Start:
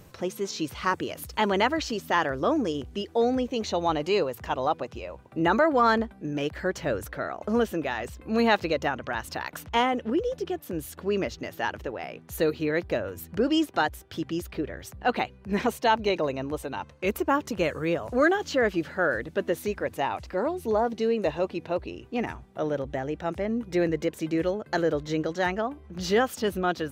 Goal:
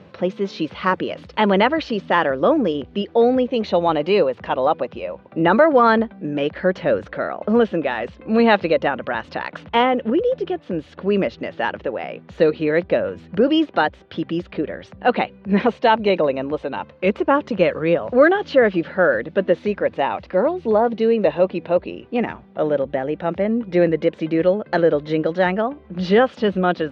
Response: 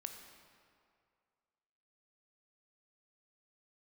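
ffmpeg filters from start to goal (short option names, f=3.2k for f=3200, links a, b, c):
-af "highpass=110,equalizer=f=130:t=q:w=4:g=-5,equalizer=f=190:t=q:w=4:g=7,equalizer=f=540:t=q:w=4:g=6,lowpass=f=3.8k:w=0.5412,lowpass=f=3.8k:w=1.3066,volume=6dB"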